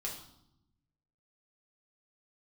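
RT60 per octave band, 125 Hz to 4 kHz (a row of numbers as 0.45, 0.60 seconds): 1.5, 1.3, 0.80, 0.75, 0.55, 0.70 seconds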